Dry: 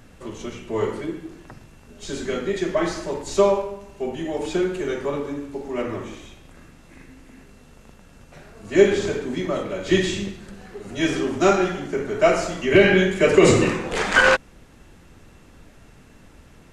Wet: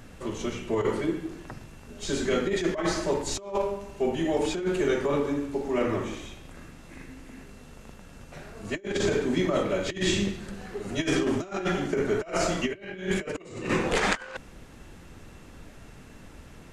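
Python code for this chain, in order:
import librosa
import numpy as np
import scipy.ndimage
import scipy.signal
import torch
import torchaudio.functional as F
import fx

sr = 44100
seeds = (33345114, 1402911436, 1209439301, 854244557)

y = fx.over_compress(x, sr, threshold_db=-24.0, ratio=-0.5)
y = y * librosa.db_to_amplitude(-2.5)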